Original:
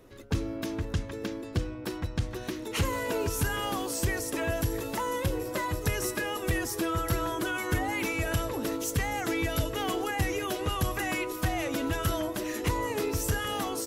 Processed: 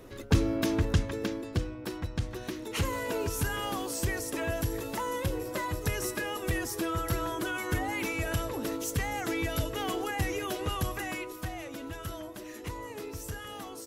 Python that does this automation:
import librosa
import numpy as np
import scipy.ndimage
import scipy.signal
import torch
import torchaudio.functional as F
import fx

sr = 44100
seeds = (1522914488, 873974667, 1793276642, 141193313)

y = fx.gain(x, sr, db=fx.line((0.85, 5.5), (1.74, -2.0), (10.75, -2.0), (11.7, -10.0)))